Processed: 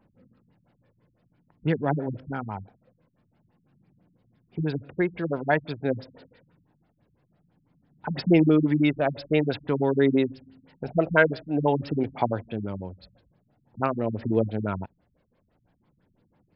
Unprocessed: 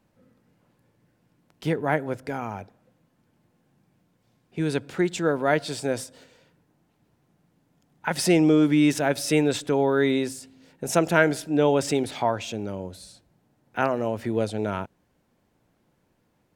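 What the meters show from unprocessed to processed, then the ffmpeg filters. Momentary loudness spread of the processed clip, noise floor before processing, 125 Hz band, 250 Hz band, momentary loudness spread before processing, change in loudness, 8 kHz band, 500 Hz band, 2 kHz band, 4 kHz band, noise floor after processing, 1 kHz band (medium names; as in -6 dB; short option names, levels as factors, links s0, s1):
14 LU, -69 dBFS, +1.5 dB, -1.0 dB, 15 LU, -1.5 dB, under -40 dB, -2.0 dB, -1.5 dB, -7.5 dB, -70 dBFS, -2.5 dB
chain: -af "aphaser=in_gain=1:out_gain=1:delay=2:decay=0.34:speed=0.49:type=triangular,afftfilt=real='re*lt(b*sr/1024,210*pow(5500/210,0.5+0.5*sin(2*PI*6*pts/sr)))':imag='im*lt(b*sr/1024,210*pow(5500/210,0.5+0.5*sin(2*PI*6*pts/sr)))':win_size=1024:overlap=0.75"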